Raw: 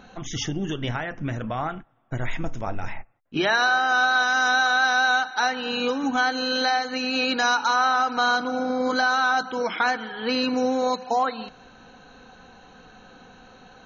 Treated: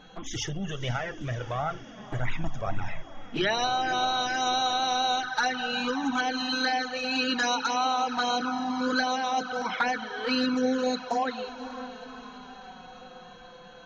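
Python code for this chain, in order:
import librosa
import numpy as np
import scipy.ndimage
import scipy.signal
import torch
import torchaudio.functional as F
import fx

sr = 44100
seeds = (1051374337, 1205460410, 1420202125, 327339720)

y = fx.echo_diffused(x, sr, ms=524, feedback_pct=64, wet_db=-14)
y = fx.env_flanger(y, sr, rest_ms=6.9, full_db=-17.0)
y = y + 10.0 ** (-58.0 / 20.0) * np.sin(2.0 * np.pi * 3300.0 * np.arange(len(y)) / sr)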